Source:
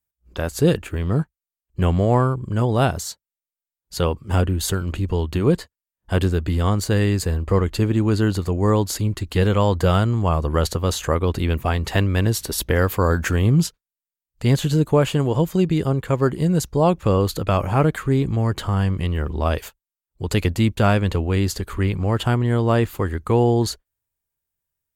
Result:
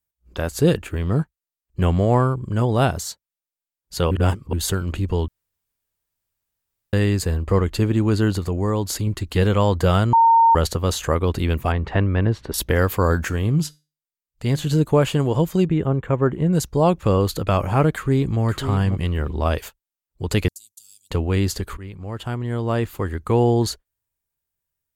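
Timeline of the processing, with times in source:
4.11–4.53 reverse
5.28–6.93 room tone
8.38–9.07 compressor 2:1, threshold -20 dBFS
10.13–10.55 bleep 916 Hz -10 dBFS
11.72–12.54 LPF 2000 Hz
13.25–14.67 resonator 150 Hz, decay 0.3 s, mix 40%
15.66–16.53 running mean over 9 samples
17.92–18.41 echo throw 0.54 s, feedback 15%, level -9 dB
20.48–21.11 inverse Chebyshev high-pass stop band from 2000 Hz, stop band 60 dB
21.77–23.46 fade in, from -17.5 dB

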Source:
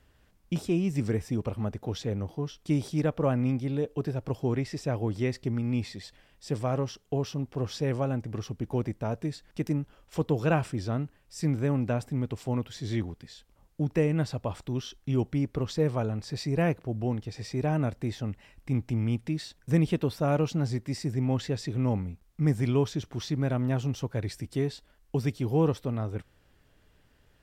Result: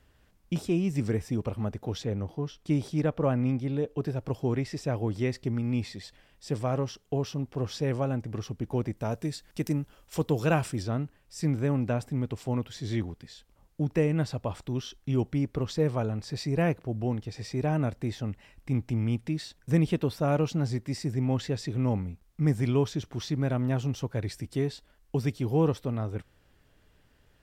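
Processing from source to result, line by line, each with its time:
2.04–4.03 high shelf 5000 Hz -5 dB
8.97–10.83 high shelf 4800 Hz +9.5 dB

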